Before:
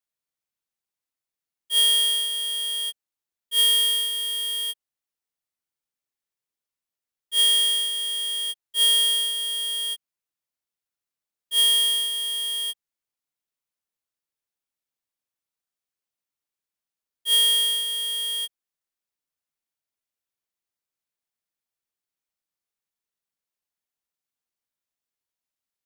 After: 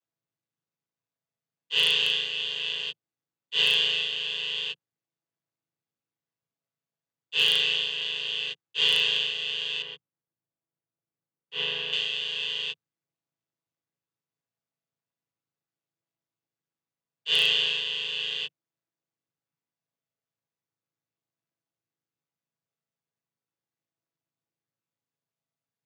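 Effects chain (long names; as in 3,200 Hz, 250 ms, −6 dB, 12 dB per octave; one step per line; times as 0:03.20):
channel vocoder with a chord as carrier major triad, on A2
0:09.82–0:11.93: low-pass filter 1,300 Hz 6 dB per octave
wave folding −10 dBFS
level −1.5 dB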